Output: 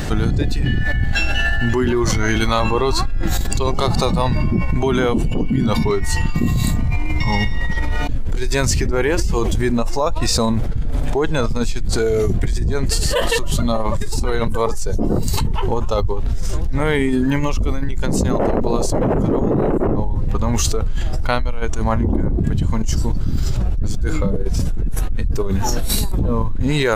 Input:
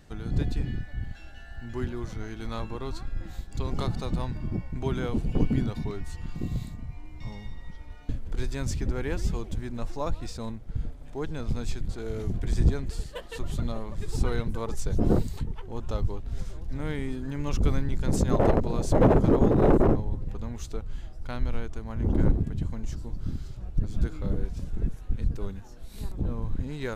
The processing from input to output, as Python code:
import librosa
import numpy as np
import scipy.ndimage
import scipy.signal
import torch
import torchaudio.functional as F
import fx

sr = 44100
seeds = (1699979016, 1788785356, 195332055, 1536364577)

y = fx.noise_reduce_blind(x, sr, reduce_db=8)
y = fx.env_flatten(y, sr, amount_pct=100)
y = y * 10.0 ** (-1.0 / 20.0)